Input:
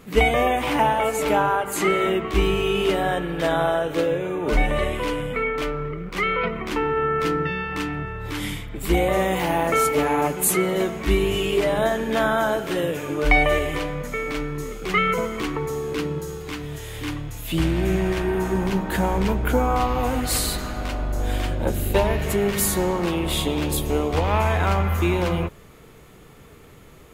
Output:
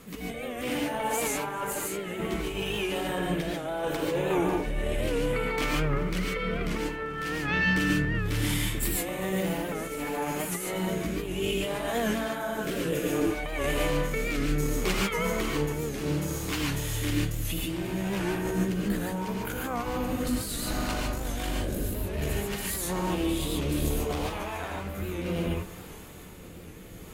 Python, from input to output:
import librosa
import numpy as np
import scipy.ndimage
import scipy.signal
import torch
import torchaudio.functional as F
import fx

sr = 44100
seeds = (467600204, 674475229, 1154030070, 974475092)

p1 = fx.high_shelf(x, sr, hz=5700.0, db=8.5)
p2 = fx.over_compress(p1, sr, threshold_db=-26.0, ratio=-1.0)
p3 = p2 * (1.0 - 0.47 / 2.0 + 0.47 / 2.0 * np.cos(2.0 * np.pi * 4.1 * (np.arange(len(p2)) / sr)))
p4 = fx.tube_stage(p3, sr, drive_db=16.0, bias=0.65)
p5 = fx.rotary(p4, sr, hz=0.65)
p6 = p5 + fx.echo_heads(p5, sr, ms=389, heads='first and third', feedback_pct=57, wet_db=-21.0, dry=0)
p7 = fx.rev_gated(p6, sr, seeds[0], gate_ms=170, shape='rising', drr_db=-2.0)
y = fx.record_warp(p7, sr, rpm=78.0, depth_cents=100.0)